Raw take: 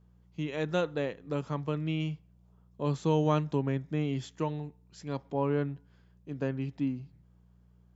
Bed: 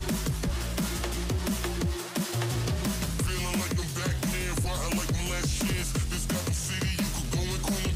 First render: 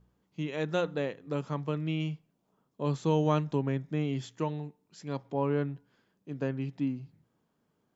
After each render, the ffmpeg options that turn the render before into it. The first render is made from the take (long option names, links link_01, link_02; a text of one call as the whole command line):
ffmpeg -i in.wav -af "bandreject=frequency=60:width_type=h:width=4,bandreject=frequency=120:width_type=h:width=4,bandreject=frequency=180:width_type=h:width=4" out.wav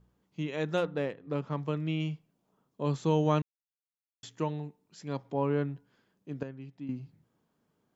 ffmpeg -i in.wav -filter_complex "[0:a]asettb=1/sr,asplit=3[link_01][link_02][link_03];[link_01]atrim=end=0.774[link_04];[link_02]atrim=start=0.77:end=1.57,asetpts=PTS-STARTPTS,afade=type=in:duration=0.004:curve=qsin,afade=type=out:start_time=0.796:duration=0.004:curve=qsin,adynamicsmooth=sensitivity=5:basefreq=3300[link_05];[link_03]atrim=start=1.566[link_06];[link_04][link_05]acrossfade=duration=0.004:curve1=hsin:curve2=qsin[link_07];[link_07][link_06]acrossfade=duration=0.004:curve1=qsin:curve2=hsin,asplit=5[link_08][link_09][link_10][link_11][link_12];[link_08]atrim=end=3.42,asetpts=PTS-STARTPTS,afade=type=out:start_time=3.416:duration=0.004:curve=hsin[link_13];[link_09]atrim=start=3.42:end=4.23,asetpts=PTS-STARTPTS,volume=0[link_14];[link_10]atrim=start=4.23:end=6.432,asetpts=PTS-STARTPTS,afade=type=in:duration=0.004:curve=hsin[link_15];[link_11]atrim=start=6.428:end=6.892,asetpts=PTS-STARTPTS,volume=-10.5dB[link_16];[link_12]atrim=start=6.888[link_17];[link_13][link_14][link_15]concat=n=3:v=0:a=1[link_18];[link_18][link_16]acrossfade=duration=0.004:curve1=hsin:curve2=hsin[link_19];[link_19][link_17]acrossfade=duration=0.004:curve1=hsin:curve2=hsin" out.wav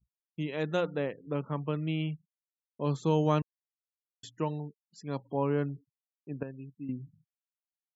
ffmpeg -i in.wav -af "afftfilt=real='re*gte(hypot(re,im),0.00355)':imag='im*gte(hypot(re,im),0.00355)':win_size=1024:overlap=0.75,agate=range=-33dB:threshold=-58dB:ratio=3:detection=peak" out.wav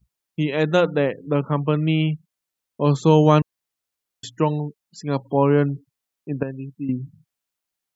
ffmpeg -i in.wav -af "volume=12dB,alimiter=limit=-2dB:level=0:latency=1" out.wav